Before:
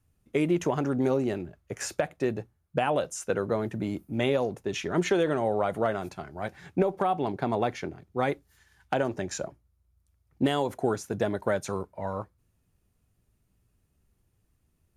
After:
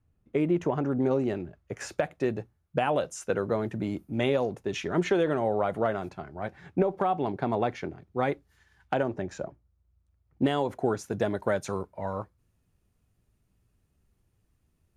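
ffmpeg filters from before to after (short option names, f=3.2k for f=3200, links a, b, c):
-af "asetnsamples=n=441:p=0,asendcmd='1.11 lowpass f 3200;1.98 lowpass f 6000;4.94 lowpass f 3400;6.05 lowpass f 2100;6.91 lowpass f 3300;9.03 lowpass f 1400;10.42 lowpass f 3200;10.99 lowpass f 8200',lowpass=f=1.4k:p=1"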